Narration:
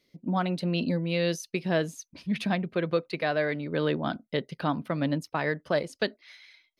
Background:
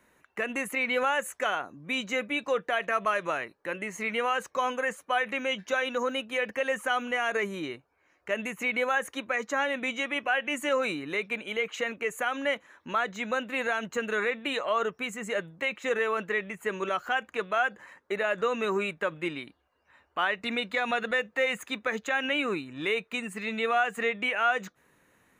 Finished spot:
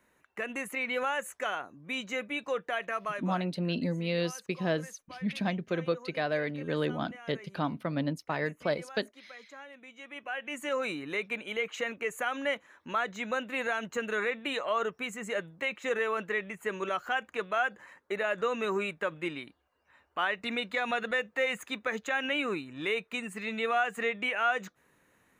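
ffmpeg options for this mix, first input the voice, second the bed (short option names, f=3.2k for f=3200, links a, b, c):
-filter_complex "[0:a]adelay=2950,volume=-3.5dB[a];[1:a]volume=13dB,afade=t=out:st=2.77:d=0.84:silence=0.16788,afade=t=in:st=9.94:d=1.11:silence=0.133352[b];[a][b]amix=inputs=2:normalize=0"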